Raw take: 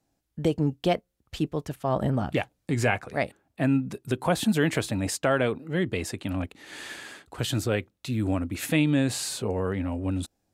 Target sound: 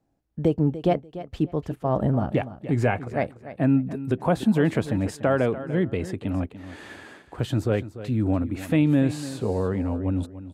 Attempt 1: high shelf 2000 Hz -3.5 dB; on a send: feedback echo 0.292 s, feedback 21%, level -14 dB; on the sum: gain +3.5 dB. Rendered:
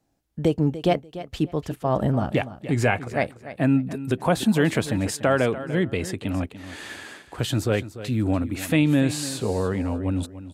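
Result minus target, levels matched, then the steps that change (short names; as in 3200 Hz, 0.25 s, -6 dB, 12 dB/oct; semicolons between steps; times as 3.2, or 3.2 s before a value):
4000 Hz band +8.0 dB
change: high shelf 2000 Hz -15 dB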